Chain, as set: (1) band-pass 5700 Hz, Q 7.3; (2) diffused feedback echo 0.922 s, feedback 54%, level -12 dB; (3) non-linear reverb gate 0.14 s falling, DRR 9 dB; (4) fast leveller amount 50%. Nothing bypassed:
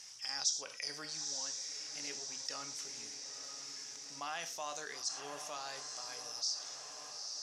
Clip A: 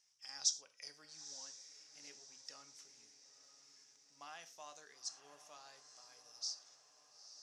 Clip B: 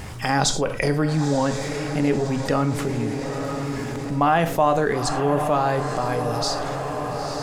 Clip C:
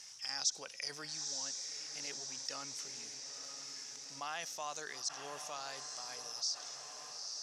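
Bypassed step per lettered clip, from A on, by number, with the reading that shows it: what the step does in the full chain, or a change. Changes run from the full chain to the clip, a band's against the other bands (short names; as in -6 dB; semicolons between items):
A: 4, crest factor change +7.5 dB; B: 1, 8 kHz band -21.5 dB; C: 3, 125 Hz band +2.0 dB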